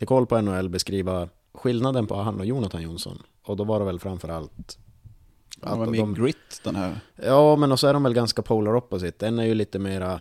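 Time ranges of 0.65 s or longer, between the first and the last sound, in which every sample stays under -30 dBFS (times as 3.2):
4.71–5.52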